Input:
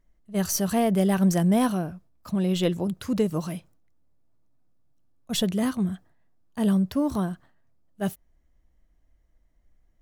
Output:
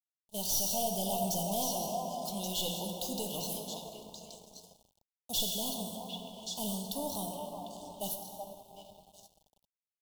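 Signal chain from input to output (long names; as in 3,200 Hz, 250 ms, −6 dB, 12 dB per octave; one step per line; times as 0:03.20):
running median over 5 samples
in parallel at +1 dB: downward compressor 6 to 1, threshold −33 dBFS, peak gain reduction 15.5 dB
on the sum: first difference
dense smooth reverb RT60 4.9 s, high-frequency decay 0.3×, DRR 3 dB
tube saturation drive 30 dB, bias 0.45
on a send: echo through a band-pass that steps 376 ms, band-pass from 770 Hz, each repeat 1.4 octaves, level −3 dB
on the sum: leveller curve on the samples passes 3
bit reduction 10 bits
elliptic band-stop filter 920–3,200 Hz, stop band 70 dB
low-shelf EQ 200 Hz +4.5 dB
comb filter 1.4 ms, depth 39%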